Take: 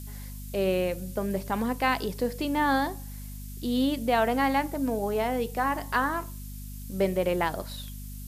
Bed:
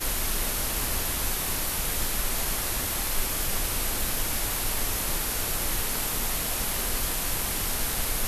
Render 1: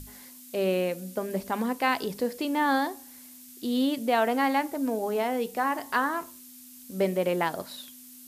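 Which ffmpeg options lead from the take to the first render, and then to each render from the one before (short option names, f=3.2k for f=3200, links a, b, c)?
-af "bandreject=f=50:t=h:w=6,bandreject=f=100:t=h:w=6,bandreject=f=150:t=h:w=6,bandreject=f=200:t=h:w=6"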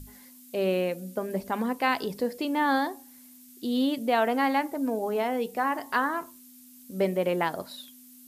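-af "afftdn=nr=6:nf=-49"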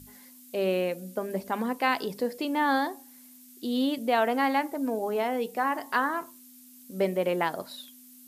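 -af "highpass=f=150:p=1"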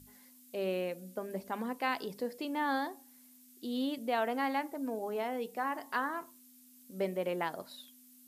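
-af "volume=-7.5dB"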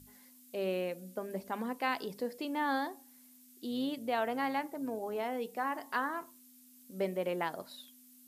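-filter_complex "[0:a]asettb=1/sr,asplit=3[a][b][c];[a]atrim=end=3.714[d];[b]atrim=start=3.71:end=5.23,asetpts=PTS-STARTPTS,afade=t=in:d=0.004:c=qsin,afade=t=out:st=1.516:d=0.004:c=qsin,tremolo=f=120:d=0.182[e];[c]atrim=start=5.226[f];[d][e]acrossfade=d=0.004:c1=hsin:c2=qsin[g];[g][f]acrossfade=d=0.004:c1=qsin:c2=hsin"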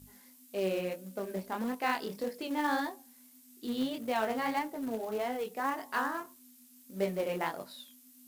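-filter_complex "[0:a]flanger=delay=20:depth=7.3:speed=1.7,asplit=2[a][b];[b]acrusher=bits=2:mode=log:mix=0:aa=0.000001,volume=-4dB[c];[a][c]amix=inputs=2:normalize=0"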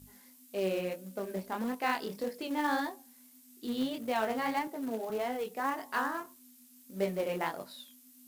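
-filter_complex "[0:a]asettb=1/sr,asplit=3[a][b][c];[a]atrim=end=4.674[d];[b]atrim=start=4.67:end=5.1,asetpts=PTS-STARTPTS,afade=t=in:d=0.004:c=qsin,afade=t=out:st=0.426:d=0.004:c=qsin,highpass=f=150:w=0.5412,highpass=f=150:w=1.3066[e];[c]atrim=start=5.096[f];[d][e]acrossfade=d=0.004:c1=hsin:c2=qsin[g];[g][f]acrossfade=d=0.004:c1=qsin:c2=hsin"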